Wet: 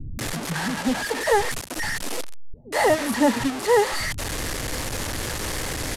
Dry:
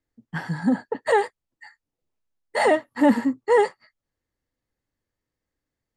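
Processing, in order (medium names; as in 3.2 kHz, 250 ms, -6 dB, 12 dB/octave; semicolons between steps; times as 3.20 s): one-bit delta coder 64 kbps, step -21.5 dBFS; bands offset in time lows, highs 190 ms, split 210 Hz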